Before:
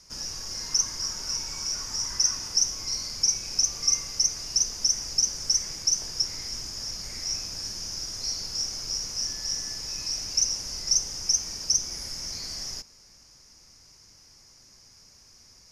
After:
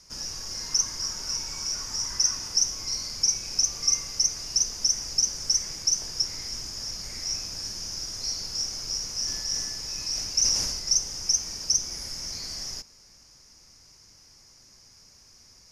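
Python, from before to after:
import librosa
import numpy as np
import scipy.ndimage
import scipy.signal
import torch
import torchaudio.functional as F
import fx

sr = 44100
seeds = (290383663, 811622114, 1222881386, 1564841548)

y = fx.sustainer(x, sr, db_per_s=35.0, at=(9.26, 10.78), fade=0.02)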